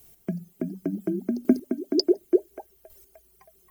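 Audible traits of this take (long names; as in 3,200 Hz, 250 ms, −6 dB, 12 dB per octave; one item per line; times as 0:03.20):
chopped level 0.69 Hz, depth 60%, duty 10%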